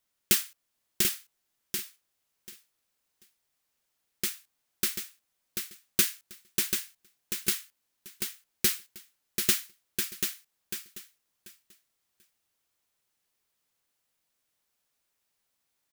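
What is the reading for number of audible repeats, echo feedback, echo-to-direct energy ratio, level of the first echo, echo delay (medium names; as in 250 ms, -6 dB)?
3, 19%, -6.0 dB, -6.0 dB, 738 ms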